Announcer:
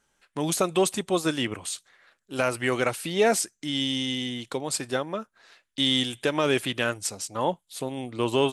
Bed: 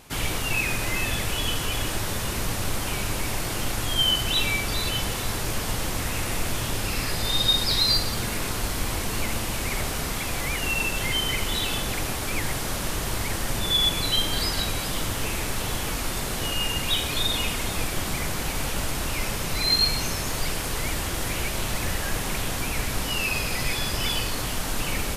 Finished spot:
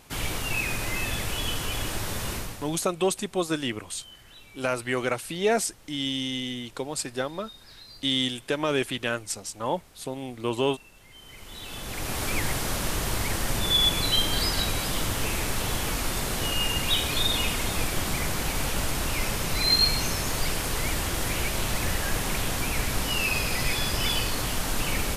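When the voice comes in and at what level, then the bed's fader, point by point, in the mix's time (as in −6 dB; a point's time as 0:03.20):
2.25 s, −2.0 dB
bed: 0:02.34 −3 dB
0:02.91 −26.5 dB
0:11.07 −26.5 dB
0:12.20 0 dB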